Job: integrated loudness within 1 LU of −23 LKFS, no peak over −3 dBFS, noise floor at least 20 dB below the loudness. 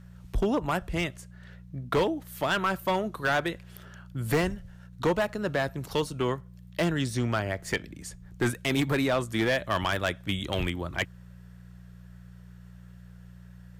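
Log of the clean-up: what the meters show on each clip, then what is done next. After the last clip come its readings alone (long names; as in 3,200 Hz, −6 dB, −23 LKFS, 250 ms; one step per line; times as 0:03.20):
share of clipped samples 1.5%; peaks flattened at −19.5 dBFS; mains hum 60 Hz; hum harmonics up to 180 Hz; level of the hum −44 dBFS; integrated loudness −29.0 LKFS; sample peak −19.5 dBFS; target loudness −23.0 LKFS
→ clipped peaks rebuilt −19.5 dBFS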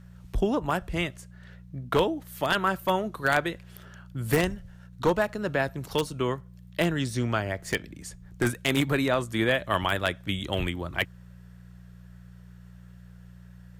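share of clipped samples 0.0%; mains hum 60 Hz; hum harmonics up to 180 Hz; level of the hum −44 dBFS
→ hum removal 60 Hz, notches 3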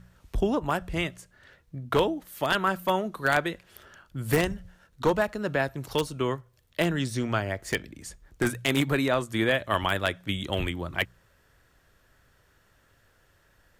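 mains hum none found; integrated loudness −28.0 LKFS; sample peak −10.0 dBFS; target loudness −23.0 LKFS
→ level +5 dB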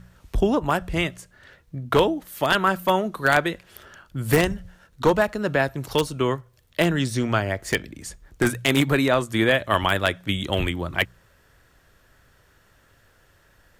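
integrated loudness −23.0 LKFS; sample peak −5.0 dBFS; background noise floor −59 dBFS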